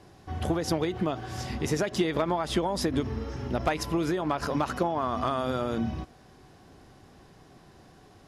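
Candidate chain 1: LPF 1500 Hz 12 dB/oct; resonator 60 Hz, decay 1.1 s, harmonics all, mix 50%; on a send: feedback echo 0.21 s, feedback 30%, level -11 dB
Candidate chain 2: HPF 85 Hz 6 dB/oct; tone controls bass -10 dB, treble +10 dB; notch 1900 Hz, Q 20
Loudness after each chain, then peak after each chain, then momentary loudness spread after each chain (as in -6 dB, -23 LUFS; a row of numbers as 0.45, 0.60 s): -34.5, -30.0 LUFS; -19.5, -11.5 dBFS; 7, 10 LU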